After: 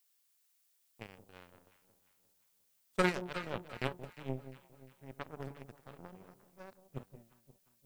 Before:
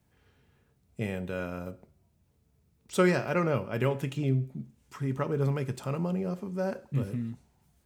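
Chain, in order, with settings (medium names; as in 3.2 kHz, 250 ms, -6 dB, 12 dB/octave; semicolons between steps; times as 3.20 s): power-law waveshaper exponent 3; added noise blue -75 dBFS; echo whose repeats swap between lows and highs 176 ms, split 840 Hz, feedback 66%, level -12 dB; trim +1 dB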